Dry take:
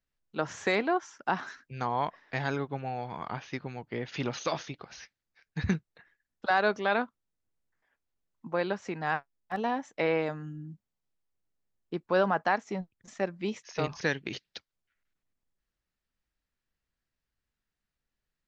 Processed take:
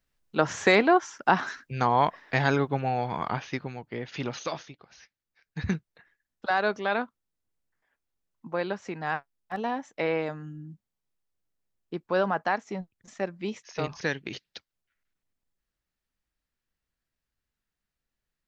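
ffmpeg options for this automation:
-af "volume=16.5dB,afade=t=out:st=3.2:d=0.64:silence=0.421697,afade=t=out:st=4.39:d=0.4:silence=0.354813,afade=t=in:st=4.79:d=0.93:silence=0.354813"

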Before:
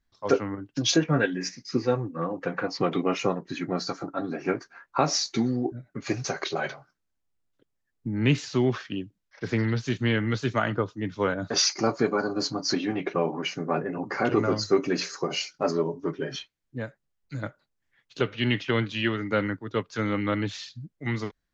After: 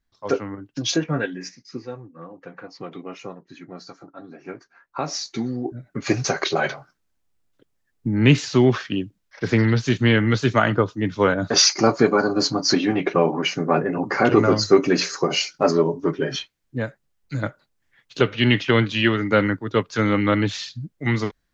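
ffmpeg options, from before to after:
-af "volume=17.5dB,afade=t=out:st=1.07:d=0.84:silence=0.316228,afade=t=in:st=4.42:d=1.22:silence=0.316228,afade=t=in:st=5.64:d=0.4:silence=0.421697"

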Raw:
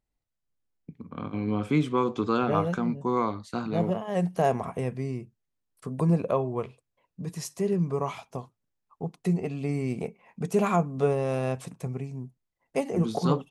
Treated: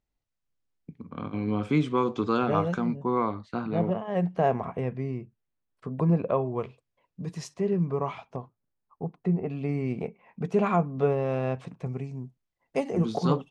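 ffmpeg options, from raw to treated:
-af "asetnsamples=n=441:p=0,asendcmd='2.96 lowpass f 2800;6.47 lowpass f 5300;7.54 lowpass f 3000;8.36 lowpass f 1600;9.5 lowpass f 3100;11.86 lowpass f 6100',lowpass=6.9k"

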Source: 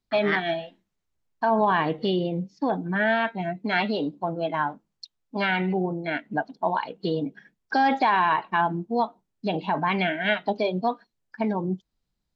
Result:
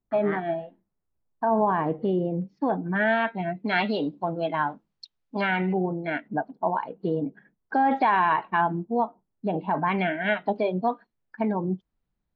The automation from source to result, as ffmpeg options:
-af "asetnsamples=n=441:p=0,asendcmd='2.42 lowpass f 2100;2.95 lowpass f 3100;3.68 lowpass f 4700;5.41 lowpass f 2500;6.28 lowpass f 1300;7.91 lowpass f 2500;8.84 lowpass f 1300;9.71 lowpass f 2200',lowpass=1.1k"

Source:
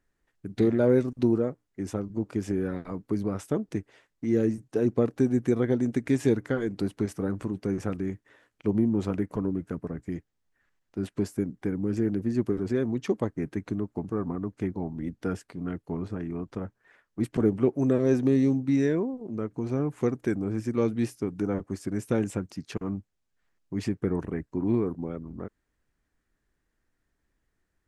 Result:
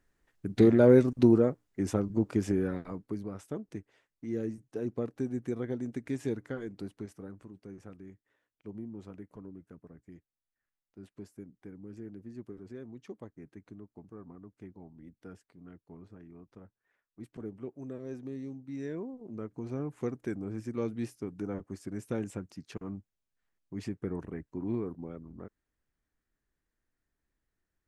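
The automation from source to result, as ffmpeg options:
-af "volume=12dB,afade=t=out:st=2.23:d=0.99:silence=0.251189,afade=t=out:st=6.61:d=0.83:silence=0.398107,afade=t=in:st=18.68:d=0.56:silence=0.316228"

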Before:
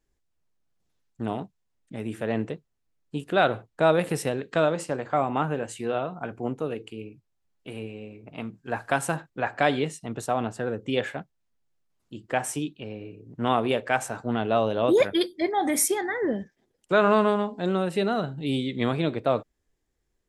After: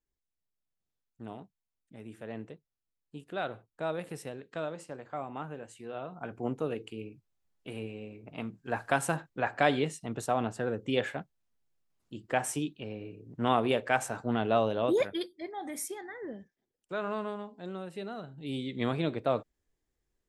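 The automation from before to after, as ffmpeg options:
-af "volume=6.5dB,afade=t=in:st=5.91:d=0.61:silence=0.298538,afade=t=out:st=14.55:d=0.81:silence=0.266073,afade=t=in:st=18.26:d=0.63:silence=0.334965"

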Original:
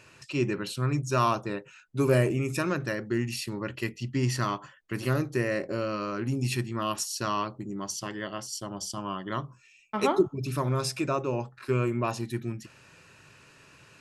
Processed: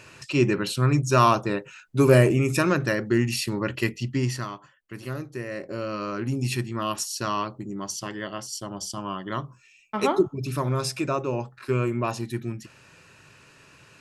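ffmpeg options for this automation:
-af "volume=14.5dB,afade=t=out:st=3.9:d=0.59:silence=0.237137,afade=t=in:st=5.46:d=0.63:silence=0.398107"

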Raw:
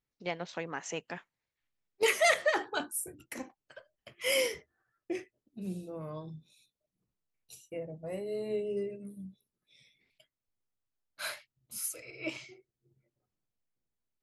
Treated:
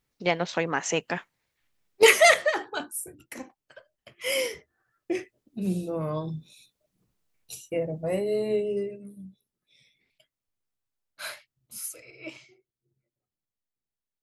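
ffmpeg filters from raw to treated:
-af "volume=20.5dB,afade=t=out:st=2.08:d=0.46:silence=0.334965,afade=t=in:st=4.56:d=1.3:silence=0.334965,afade=t=out:st=8.11:d=0.92:silence=0.316228,afade=t=out:st=11.76:d=0.75:silence=0.446684"

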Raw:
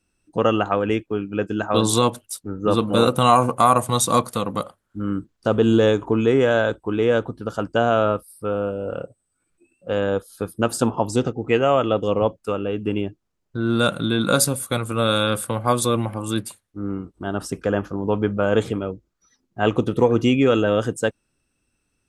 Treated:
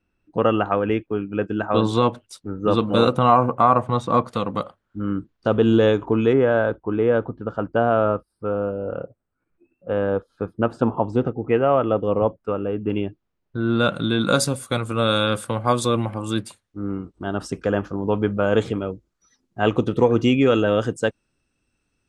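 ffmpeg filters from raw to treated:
-af "asetnsamples=n=441:p=0,asendcmd='2.26 lowpass f 4700;3.18 lowpass f 1900;4.27 lowpass f 4000;6.33 lowpass f 1700;12.9 lowpass f 3600;13.95 lowpass f 6900;18.77 lowpass f 11000;19.61 lowpass f 6700',lowpass=2.7k"

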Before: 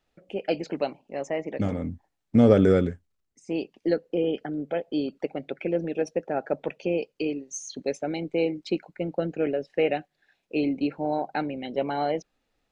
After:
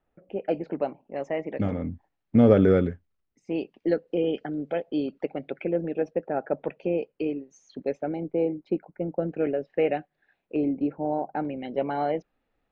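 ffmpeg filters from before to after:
-af "asetnsamples=n=441:p=0,asendcmd='1.16 lowpass f 3000;4.08 lowpass f 5000;4.83 lowpass f 3000;5.64 lowpass f 1900;8.08 lowpass f 1100;9.29 lowpass f 2100;10.56 lowpass f 1100;11.45 lowpass f 2300',lowpass=1.5k"

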